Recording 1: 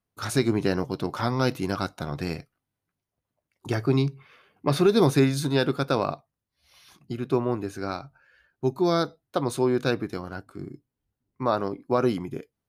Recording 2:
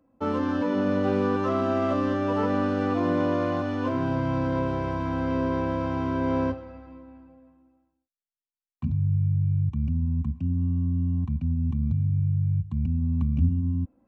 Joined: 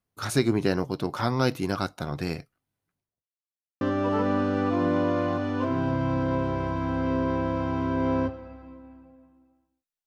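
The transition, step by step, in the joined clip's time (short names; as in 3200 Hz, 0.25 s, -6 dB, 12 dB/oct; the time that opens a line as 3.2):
recording 1
2.89–3.31 studio fade out
3.31–3.81 mute
3.81 switch to recording 2 from 2.05 s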